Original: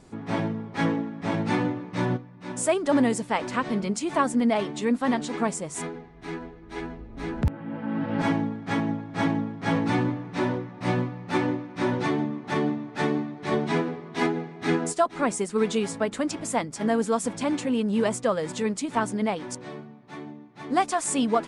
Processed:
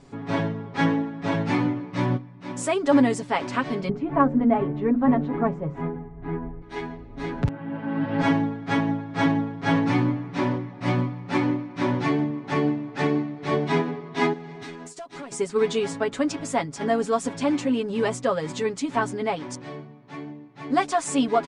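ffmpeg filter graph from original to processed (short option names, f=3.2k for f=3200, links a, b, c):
-filter_complex "[0:a]asettb=1/sr,asplit=3[a][b][c];[a]atrim=end=3.894[d];[b]atrim=start=3.89:end=6.62,asetpts=PTS-STARTPTS,afade=t=in:d=0.004:c=qsin,afade=t=out:st=2.726:d=0.004:c=qsin,lowpass=1.5k,aemphasis=mode=reproduction:type=bsi,bandreject=f=60:t=h:w=6,bandreject=f=120:t=h:w=6,bandreject=f=180:t=h:w=6,bandreject=f=240:t=h:w=6,bandreject=f=300:t=h:w=6,bandreject=f=360:t=h:w=6,bandreject=f=420:t=h:w=6,bandreject=f=480:t=h:w=6,bandreject=f=540:t=h:w=6[e];[c]atrim=start=6.616[f];[d][e]acrossfade=d=0.004:c1=hsin:c2=qsin[g];[g][f]acrossfade=d=0.004:c1=qsin:c2=hsin,asettb=1/sr,asplit=3[h][i][j];[h]atrim=end=14.334[k];[i]atrim=start=14.33:end=15.32,asetpts=PTS-STARTPTS,afade=t=in:d=0.004:c=qsin,afade=t=out:st=0.986:d=0.004:c=qsin,highshelf=f=4.2k:g=11,acompressor=threshold=-35dB:ratio=12:attack=3.2:release=140:knee=1:detection=peak,asoftclip=type=hard:threshold=-35dB[l];[j]atrim=start=15.316[m];[k][l]acrossfade=d=0.004:c1=hsin:c2=qsin[n];[n][m]acrossfade=d=0.004:c1=qsin:c2=hsin,lowpass=6.9k,aecho=1:1:7.2:0.67"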